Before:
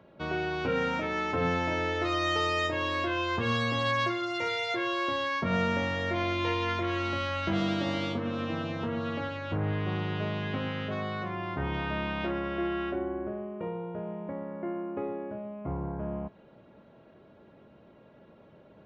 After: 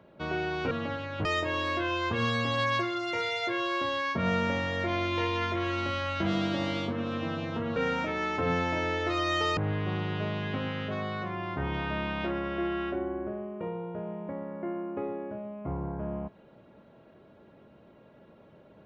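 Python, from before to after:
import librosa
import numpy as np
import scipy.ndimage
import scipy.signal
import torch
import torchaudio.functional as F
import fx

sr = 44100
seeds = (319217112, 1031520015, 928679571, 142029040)

y = fx.edit(x, sr, fx.swap(start_s=0.71, length_s=1.81, other_s=9.03, other_length_s=0.54), tone=tone)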